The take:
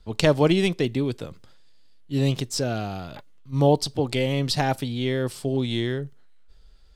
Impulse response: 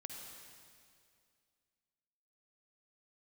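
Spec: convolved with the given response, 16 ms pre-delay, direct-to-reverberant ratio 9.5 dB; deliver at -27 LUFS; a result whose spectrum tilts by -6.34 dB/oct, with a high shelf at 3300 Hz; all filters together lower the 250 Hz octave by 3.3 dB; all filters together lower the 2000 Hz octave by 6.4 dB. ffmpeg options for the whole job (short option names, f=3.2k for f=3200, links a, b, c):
-filter_complex "[0:a]equalizer=f=250:t=o:g=-4.5,equalizer=f=2k:t=o:g=-5.5,highshelf=f=3.3k:g=-7.5,asplit=2[a][b];[1:a]atrim=start_sample=2205,adelay=16[c];[b][c]afir=irnorm=-1:irlink=0,volume=-6dB[d];[a][d]amix=inputs=2:normalize=0,volume=-1dB"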